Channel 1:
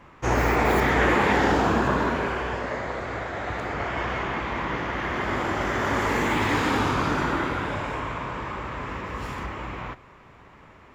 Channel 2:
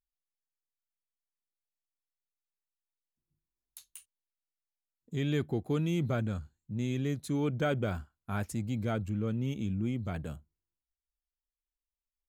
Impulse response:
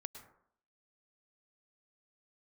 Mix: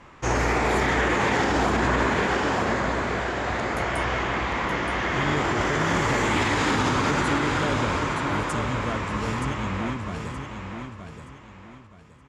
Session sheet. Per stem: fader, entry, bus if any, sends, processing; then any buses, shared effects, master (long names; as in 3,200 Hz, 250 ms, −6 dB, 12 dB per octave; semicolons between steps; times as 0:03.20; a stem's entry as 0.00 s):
+1.5 dB, 0.00 s, no send, echo send −6.5 dB, hum removal 79.86 Hz, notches 35
+1.5 dB, 0.00 s, no send, echo send −7 dB, no processing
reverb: not used
echo: repeating echo 923 ms, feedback 31%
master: low-pass filter 9,200 Hz 24 dB per octave; high-shelf EQ 4,600 Hz +8 dB; brickwall limiter −13.5 dBFS, peak gain reduction 7.5 dB